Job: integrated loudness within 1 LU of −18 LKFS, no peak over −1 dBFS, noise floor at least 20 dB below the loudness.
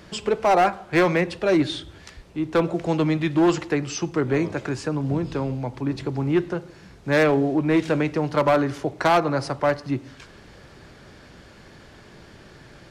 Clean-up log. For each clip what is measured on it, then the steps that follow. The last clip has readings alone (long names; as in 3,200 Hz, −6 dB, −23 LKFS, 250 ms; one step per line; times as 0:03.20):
share of clipped samples 1.4%; peaks flattened at −13.0 dBFS; integrated loudness −23.0 LKFS; sample peak −13.0 dBFS; target loudness −18.0 LKFS
→ clipped peaks rebuilt −13 dBFS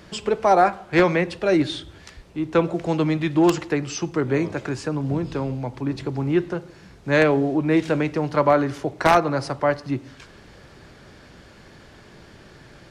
share of clipped samples 0.0%; integrated loudness −22.0 LKFS; sample peak −4.0 dBFS; target loudness −18.0 LKFS
→ level +4 dB
brickwall limiter −1 dBFS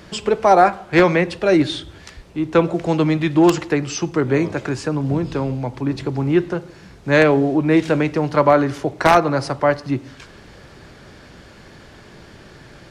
integrated loudness −18.0 LKFS; sample peak −1.0 dBFS; background noise floor −44 dBFS